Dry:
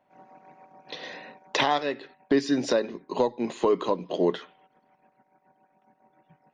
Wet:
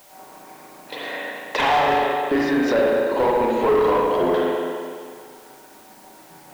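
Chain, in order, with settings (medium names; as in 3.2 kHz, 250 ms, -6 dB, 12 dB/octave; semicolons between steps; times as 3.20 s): treble shelf 3.8 kHz -7.5 dB; reverse; upward compressor, threshold -46 dBFS; reverse; spring tank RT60 1.9 s, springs 35/42 ms, chirp 60 ms, DRR -4.5 dB; overdrive pedal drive 19 dB, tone 2.4 kHz, clips at -7 dBFS; word length cut 8-bit, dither triangular; trim -3 dB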